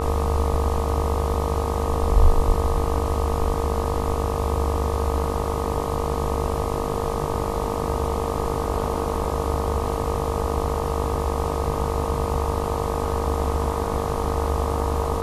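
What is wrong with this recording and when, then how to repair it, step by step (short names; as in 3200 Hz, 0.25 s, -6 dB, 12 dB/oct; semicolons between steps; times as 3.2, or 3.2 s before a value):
buzz 50 Hz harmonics 25 -28 dBFS
tone 460 Hz -29 dBFS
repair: notch 460 Hz, Q 30; de-hum 50 Hz, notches 25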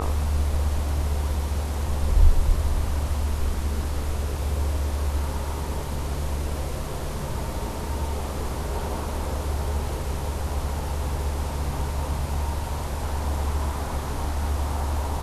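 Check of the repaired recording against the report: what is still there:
none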